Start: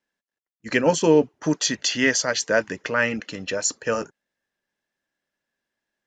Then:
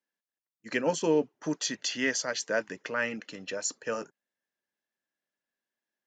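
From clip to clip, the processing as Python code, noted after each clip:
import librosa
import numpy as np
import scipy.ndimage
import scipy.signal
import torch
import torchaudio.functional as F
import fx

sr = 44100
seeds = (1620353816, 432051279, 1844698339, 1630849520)

y = scipy.signal.sosfilt(scipy.signal.butter(2, 160.0, 'highpass', fs=sr, output='sos'), x)
y = y * librosa.db_to_amplitude(-8.5)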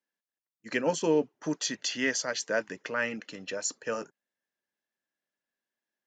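y = x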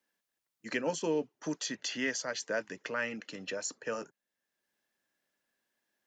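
y = fx.band_squash(x, sr, depth_pct=40)
y = y * librosa.db_to_amplitude(-4.5)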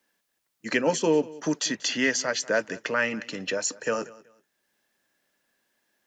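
y = fx.echo_feedback(x, sr, ms=189, feedback_pct=25, wet_db=-20.5)
y = y * librosa.db_to_amplitude(9.0)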